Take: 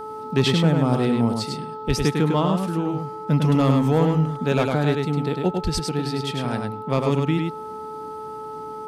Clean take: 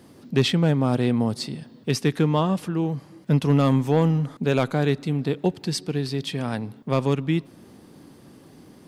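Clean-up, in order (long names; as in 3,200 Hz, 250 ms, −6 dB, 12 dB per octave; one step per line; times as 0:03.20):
hum removal 433.5 Hz, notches 3
0:01.87–0:01.99: high-pass filter 140 Hz 24 dB per octave
0:05.63–0:05.75: high-pass filter 140 Hz 24 dB per octave
echo removal 102 ms −4 dB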